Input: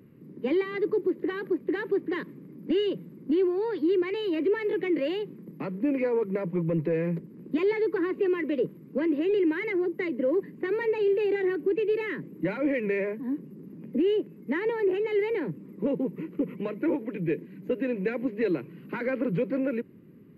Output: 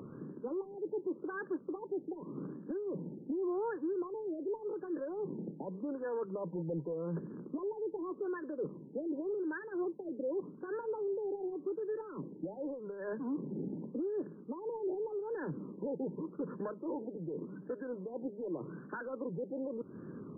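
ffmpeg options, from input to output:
-af "tiltshelf=f=700:g=-9.5,areverse,acompressor=threshold=0.00794:ratio=8,areverse,alimiter=level_in=7.94:limit=0.0631:level=0:latency=1:release=213,volume=0.126,adynamicsmooth=sensitivity=6.5:basefreq=1900,afftfilt=real='re*lt(b*sr/1024,890*pow(1800/890,0.5+0.5*sin(2*PI*0.86*pts/sr)))':imag='im*lt(b*sr/1024,890*pow(1800/890,0.5+0.5*sin(2*PI*0.86*pts/sr)))':win_size=1024:overlap=0.75,volume=4.47"

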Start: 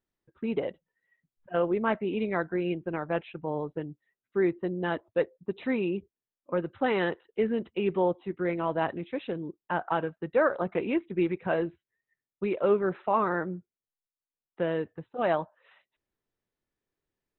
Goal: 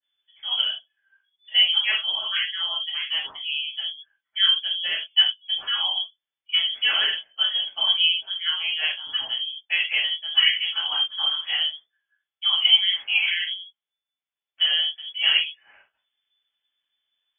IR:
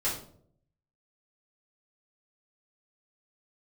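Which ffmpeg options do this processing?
-filter_complex "[1:a]atrim=start_sample=2205,atrim=end_sample=4410[s0];[0:a][s0]afir=irnorm=-1:irlink=0,lowpass=f=3000:t=q:w=0.5098,lowpass=f=3000:t=q:w=0.6013,lowpass=f=3000:t=q:w=0.9,lowpass=f=3000:t=q:w=2.563,afreqshift=-3500,adynamicequalizer=threshold=0.0251:dfrequency=1900:dqfactor=0.7:tfrequency=1900:tqfactor=0.7:attack=5:release=100:ratio=0.375:range=3:mode=cutabove:tftype=highshelf"

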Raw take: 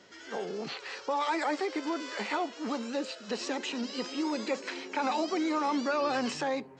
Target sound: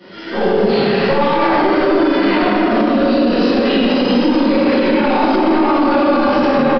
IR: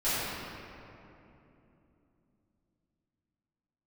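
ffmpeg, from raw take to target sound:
-filter_complex "[0:a]highpass=110,lowshelf=f=280:g=11,aeval=exprs='(tanh(20*val(0)+0.1)-tanh(0.1))/20':c=same,aecho=1:1:85:0.447[s0];[1:a]atrim=start_sample=2205,asetrate=26019,aresample=44100[s1];[s0][s1]afir=irnorm=-1:irlink=0,aresample=11025,aresample=44100,asettb=1/sr,asplit=3[s2][s3][s4];[s2]atrim=end=1.744[s5];[s3]atrim=start=1.74:end=3.89,asetpts=PTS-STARTPTS,afade=t=in:d=0.004:c=qsin,afade=t=out:st=2.146:d=0.004:c=qsin,asuperstop=centerf=850:order=4:qfactor=7.7[s6];[s4]atrim=start=3.886[s7];[s5][s6]acrossfade=d=0.004:c1=hsin:c2=qsin[s8];[s8][s7]acrossfade=d=0.004:c1=qsin:c2=hsin,alimiter=level_in=3.55:limit=0.891:release=50:level=0:latency=1,volume=0.596"

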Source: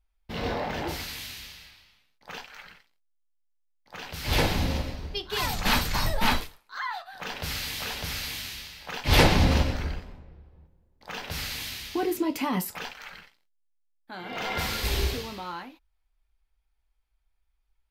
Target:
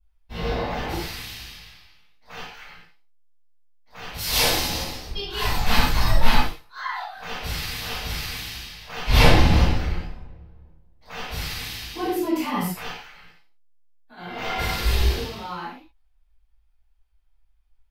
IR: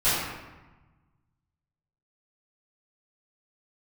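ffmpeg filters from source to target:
-filter_complex "[0:a]asettb=1/sr,asplit=3[s0][s1][s2];[s0]atrim=end=4.184[s3];[s1]atrim=start=4.18:end=5.08,asetpts=PTS-STARTPTS,afade=t=in:d=0.004:c=qsin,afade=t=out:st=0.896:d=0.004:c=qsin,bass=f=250:g=-11,treble=f=4000:g=14[s4];[s2]atrim=start=5.076[s5];[s3][s4]acrossfade=d=0.004:c1=hsin:c2=qsin[s6];[s6][s5]acrossfade=d=0.004:c1=qsin:c2=hsin,asettb=1/sr,asplit=3[s7][s8][s9];[s7]atrim=end=12.974[s10];[s8]atrim=start=12.97:end=14.17,asetpts=PTS-STARTPTS,afade=t=in:d=0.004:c=qsin,afade=t=out:st=1.196:d=0.004:c=qsin,acompressor=threshold=0.00501:ratio=6[s11];[s9]atrim=start=14.166[s12];[s10][s11]acrossfade=d=0.004:c1=hsin:c2=qsin[s13];[s13][s12]acrossfade=d=0.004:c1=qsin:c2=hsin[s14];[1:a]atrim=start_sample=2205,afade=t=out:st=0.19:d=0.01,atrim=end_sample=8820[s15];[s14][s15]afir=irnorm=-1:irlink=0,volume=0.266"

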